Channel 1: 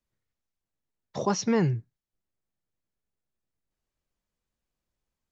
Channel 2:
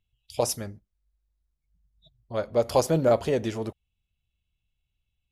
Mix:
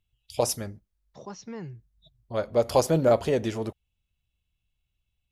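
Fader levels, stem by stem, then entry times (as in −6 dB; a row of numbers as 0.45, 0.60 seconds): −14.5, +0.5 decibels; 0.00, 0.00 seconds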